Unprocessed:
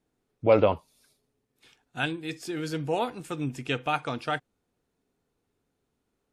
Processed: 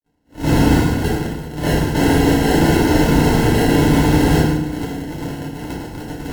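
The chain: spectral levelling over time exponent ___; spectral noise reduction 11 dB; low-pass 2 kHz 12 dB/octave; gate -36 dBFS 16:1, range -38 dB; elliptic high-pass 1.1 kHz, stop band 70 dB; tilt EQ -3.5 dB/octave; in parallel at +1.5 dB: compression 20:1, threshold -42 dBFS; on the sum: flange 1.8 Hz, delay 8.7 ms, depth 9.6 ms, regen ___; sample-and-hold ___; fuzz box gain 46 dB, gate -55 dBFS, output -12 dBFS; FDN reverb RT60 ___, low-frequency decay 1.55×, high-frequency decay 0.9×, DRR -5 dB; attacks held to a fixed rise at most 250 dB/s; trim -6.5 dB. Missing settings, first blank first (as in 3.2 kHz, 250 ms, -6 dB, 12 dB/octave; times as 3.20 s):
0.2, -33%, 37×, 0.84 s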